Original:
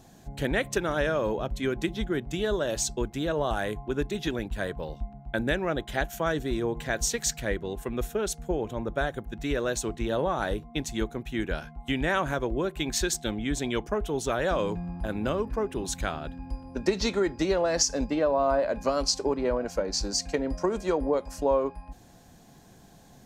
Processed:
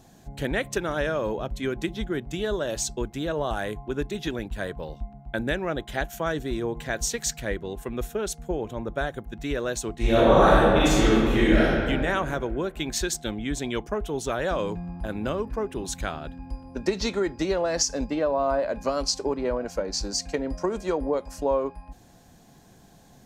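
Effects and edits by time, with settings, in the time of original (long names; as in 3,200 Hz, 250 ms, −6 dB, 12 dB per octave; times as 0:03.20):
0:09.95–0:11.75: thrown reverb, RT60 2.2 s, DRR −11.5 dB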